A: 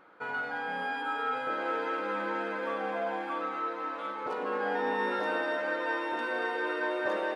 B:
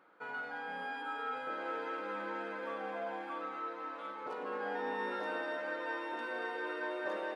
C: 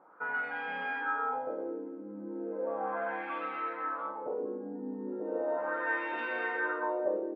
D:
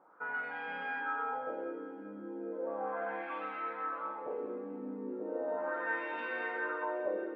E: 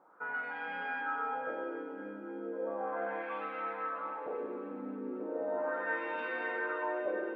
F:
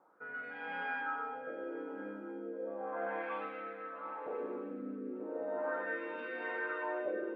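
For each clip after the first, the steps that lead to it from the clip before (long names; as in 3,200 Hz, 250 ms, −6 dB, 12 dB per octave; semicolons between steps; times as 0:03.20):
high-pass filter 140 Hz; level −7 dB
auto-filter low-pass sine 0.36 Hz 250–2,600 Hz; level +2.5 dB
delay that swaps between a low-pass and a high-pass 194 ms, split 1,600 Hz, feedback 69%, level −11 dB; level −3.5 dB
delay that swaps between a low-pass and a high-pass 135 ms, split 970 Hz, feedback 83%, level −10.5 dB
rotating-speaker cabinet horn 0.85 Hz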